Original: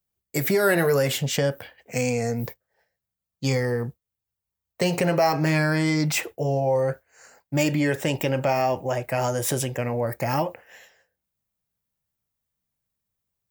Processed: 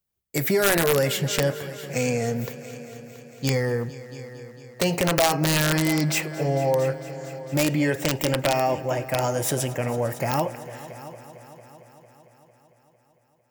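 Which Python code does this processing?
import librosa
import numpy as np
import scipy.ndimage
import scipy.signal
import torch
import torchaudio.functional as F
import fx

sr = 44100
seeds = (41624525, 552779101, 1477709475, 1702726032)

y = fx.echo_heads(x, sr, ms=226, heads='all three', feedback_pct=55, wet_db=-19.5)
y = (np.mod(10.0 ** (12.0 / 20.0) * y + 1.0, 2.0) - 1.0) / 10.0 ** (12.0 / 20.0)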